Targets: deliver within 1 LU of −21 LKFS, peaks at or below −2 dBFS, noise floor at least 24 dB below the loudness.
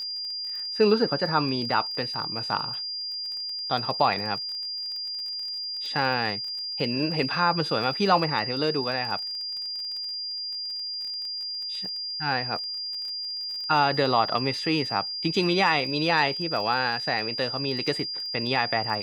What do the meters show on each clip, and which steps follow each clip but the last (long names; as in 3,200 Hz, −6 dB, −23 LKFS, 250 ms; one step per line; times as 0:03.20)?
crackle rate 24 per second; interfering tone 4,800 Hz; level of the tone −30 dBFS; integrated loudness −26.0 LKFS; sample peak −8.0 dBFS; target loudness −21.0 LKFS
→ click removal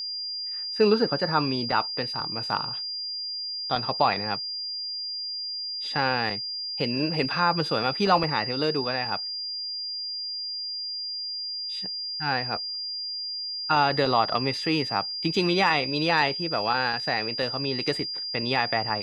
crackle rate 0.053 per second; interfering tone 4,800 Hz; level of the tone −30 dBFS
→ notch filter 4,800 Hz, Q 30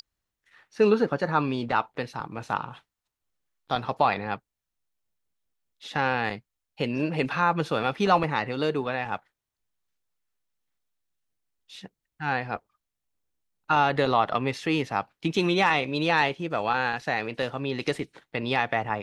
interfering tone none found; integrated loudness −26.5 LKFS; sample peak −8.0 dBFS; target loudness −21.0 LKFS
→ level +5.5 dB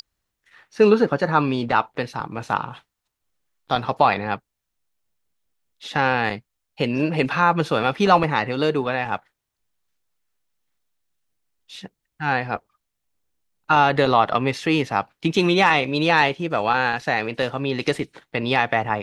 integrated loudness −21.0 LKFS; sample peak −2.5 dBFS; background noise floor −80 dBFS